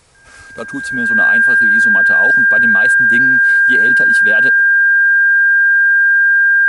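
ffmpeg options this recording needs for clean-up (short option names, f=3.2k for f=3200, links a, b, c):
-af "bandreject=f=1.6k:w=30"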